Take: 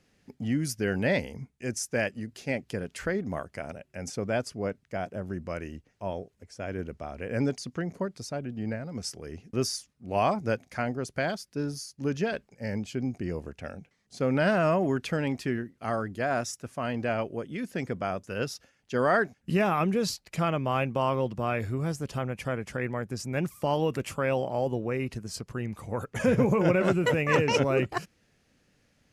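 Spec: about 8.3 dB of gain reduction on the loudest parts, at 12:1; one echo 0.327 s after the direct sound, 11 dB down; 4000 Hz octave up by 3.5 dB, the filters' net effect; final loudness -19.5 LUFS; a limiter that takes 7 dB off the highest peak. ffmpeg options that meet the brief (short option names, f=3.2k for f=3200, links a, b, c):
-af "equalizer=f=4k:t=o:g=5,acompressor=threshold=-26dB:ratio=12,alimiter=limit=-23dB:level=0:latency=1,aecho=1:1:327:0.282,volume=15dB"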